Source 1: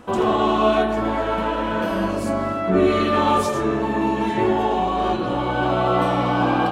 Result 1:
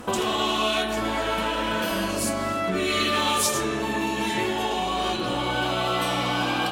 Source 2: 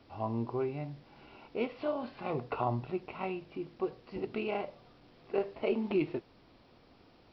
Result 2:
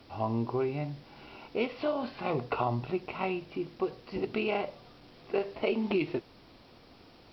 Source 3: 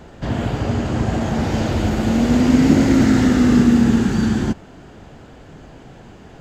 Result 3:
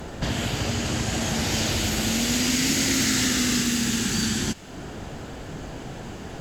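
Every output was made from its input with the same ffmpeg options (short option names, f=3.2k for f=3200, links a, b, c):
-filter_complex "[0:a]aemphasis=mode=production:type=cd,acrossover=split=2000[a][b];[a]acompressor=threshold=-30dB:ratio=6[c];[c][b]amix=inputs=2:normalize=0,volume=5dB"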